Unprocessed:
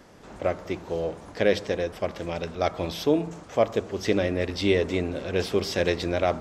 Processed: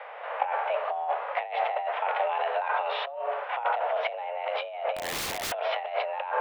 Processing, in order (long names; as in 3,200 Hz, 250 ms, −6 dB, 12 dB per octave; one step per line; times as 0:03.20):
harmonic and percussive parts rebalanced harmonic +9 dB
compressor whose output falls as the input rises −28 dBFS, ratio −1
single-sideband voice off tune +260 Hz 270–2,700 Hz
0:04.96–0:05.52: wrap-around overflow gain 27 dB